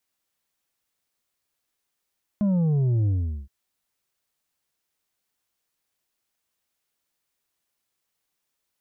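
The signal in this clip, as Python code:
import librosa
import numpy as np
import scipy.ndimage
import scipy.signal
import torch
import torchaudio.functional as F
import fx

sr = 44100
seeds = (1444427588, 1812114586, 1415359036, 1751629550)

y = fx.sub_drop(sr, level_db=-19.5, start_hz=210.0, length_s=1.07, drive_db=5.5, fade_s=0.41, end_hz=65.0)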